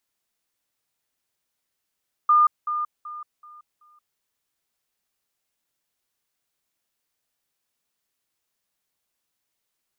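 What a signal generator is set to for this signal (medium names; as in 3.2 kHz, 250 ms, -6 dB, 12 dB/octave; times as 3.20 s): level ladder 1.21 kHz -13 dBFS, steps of -10 dB, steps 5, 0.18 s 0.20 s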